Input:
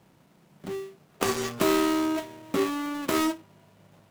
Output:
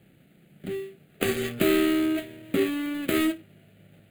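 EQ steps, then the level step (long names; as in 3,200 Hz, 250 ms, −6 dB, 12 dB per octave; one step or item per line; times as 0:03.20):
phaser with its sweep stopped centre 2,400 Hz, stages 4
+3.5 dB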